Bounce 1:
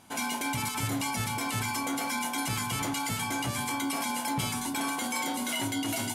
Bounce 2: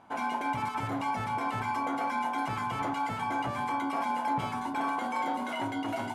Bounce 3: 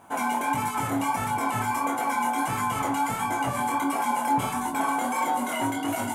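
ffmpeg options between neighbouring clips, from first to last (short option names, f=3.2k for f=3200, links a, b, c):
-af "lowpass=f=1.4k:p=1,equalizer=f=950:t=o:w=2.6:g=12,volume=-6dB"
-af "flanger=delay=20:depth=5.5:speed=1.5,aexciter=amount=6.1:drive=4.2:freq=6.7k,volume=8dB"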